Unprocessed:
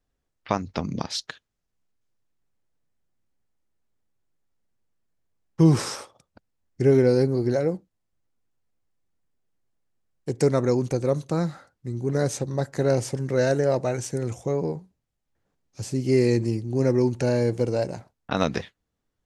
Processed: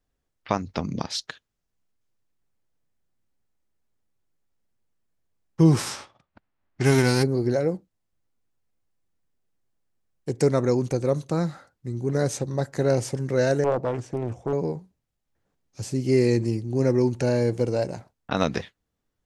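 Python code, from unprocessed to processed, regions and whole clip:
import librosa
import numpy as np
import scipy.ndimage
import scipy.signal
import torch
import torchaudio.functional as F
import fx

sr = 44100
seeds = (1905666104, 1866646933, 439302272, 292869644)

y = fx.envelope_flatten(x, sr, power=0.6, at=(5.77, 7.22), fade=0.02)
y = fx.env_lowpass(y, sr, base_hz=1900.0, full_db=-18.0, at=(5.77, 7.22), fade=0.02)
y = fx.peak_eq(y, sr, hz=480.0, db=-8.5, octaves=0.36, at=(5.77, 7.22), fade=0.02)
y = fx.chain(y, sr, fx.lowpass(hz=1200.0, slope=6),
    fx.doppler_dist(depth_ms=0.54), at=(13.64, 14.53))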